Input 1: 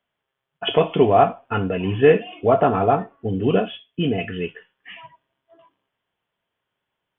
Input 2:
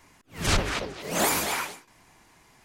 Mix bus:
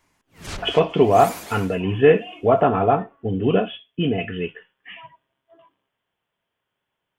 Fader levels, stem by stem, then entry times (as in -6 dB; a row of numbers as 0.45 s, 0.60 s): 0.0 dB, -9.5 dB; 0.00 s, 0.00 s